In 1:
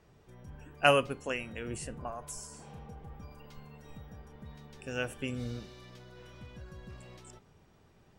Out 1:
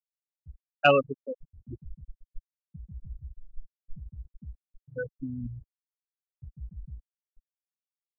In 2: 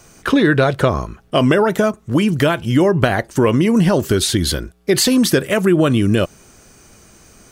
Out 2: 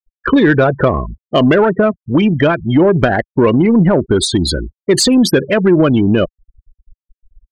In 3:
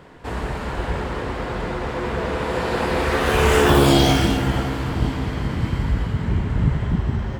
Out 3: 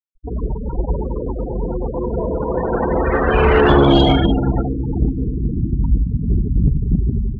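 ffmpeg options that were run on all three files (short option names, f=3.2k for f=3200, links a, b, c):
-af "areverse,acompressor=mode=upward:threshold=-36dB:ratio=2.5,areverse,lowshelf=f=190:g=10,afftfilt=real='re*gte(hypot(re,im),0.158)':imag='im*gte(hypot(re,im),0.158)':win_size=1024:overlap=0.75,equalizer=f=94:w=0.79:g=-11.5,acontrast=34,volume=-1dB"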